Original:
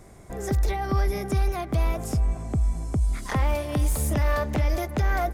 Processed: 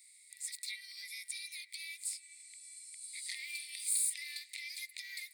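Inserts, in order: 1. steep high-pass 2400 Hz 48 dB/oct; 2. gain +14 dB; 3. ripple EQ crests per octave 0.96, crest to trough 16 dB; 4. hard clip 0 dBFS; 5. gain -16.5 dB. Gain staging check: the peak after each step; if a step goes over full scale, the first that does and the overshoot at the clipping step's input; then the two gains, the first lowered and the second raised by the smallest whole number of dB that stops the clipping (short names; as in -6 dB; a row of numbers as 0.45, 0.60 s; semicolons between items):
-21.0, -7.0, -4.5, -4.5, -21.0 dBFS; no overload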